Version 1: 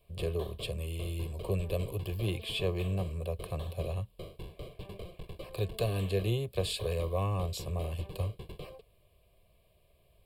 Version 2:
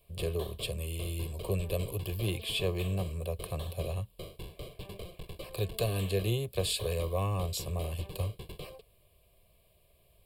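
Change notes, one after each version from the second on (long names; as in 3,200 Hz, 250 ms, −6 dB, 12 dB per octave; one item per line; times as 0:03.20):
speech: add high-shelf EQ 5,000 Hz +8 dB
background: add high-shelf EQ 3,400 Hz +9 dB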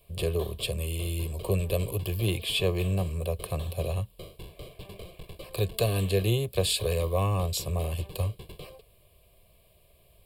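speech +5.0 dB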